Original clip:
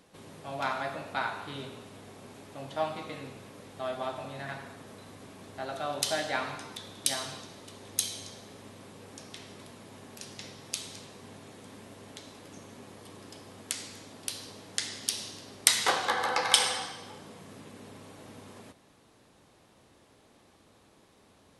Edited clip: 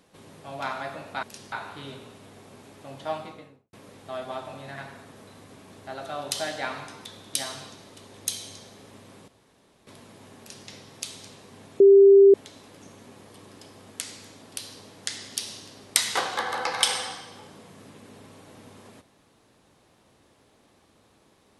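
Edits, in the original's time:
0:02.85–0:03.44: fade out and dull
0:08.99–0:09.58: fill with room tone
0:10.10–0:10.39: duplicate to 0:01.23
0:11.51–0:12.05: beep over 395 Hz −9.5 dBFS

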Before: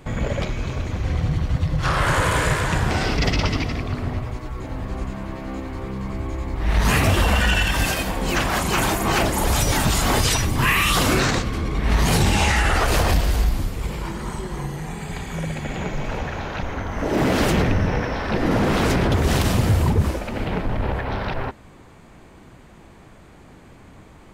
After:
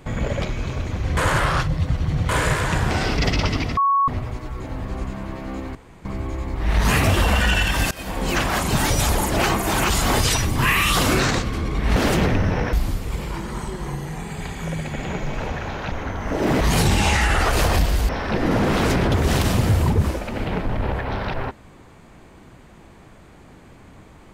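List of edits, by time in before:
0:01.17–0:02.29: reverse
0:03.77–0:04.08: beep over 1,110 Hz −14.5 dBFS
0:05.75–0:06.05: fill with room tone
0:07.91–0:08.20: fade in, from −23 dB
0:08.72–0:09.90: reverse
0:11.96–0:13.44: swap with 0:17.32–0:18.09

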